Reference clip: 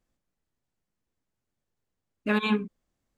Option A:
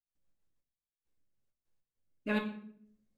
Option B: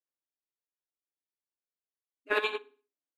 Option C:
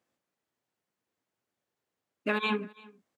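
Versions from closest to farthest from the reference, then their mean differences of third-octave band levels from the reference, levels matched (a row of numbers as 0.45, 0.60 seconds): C, A, B; 3.5, 4.5, 7.0 decibels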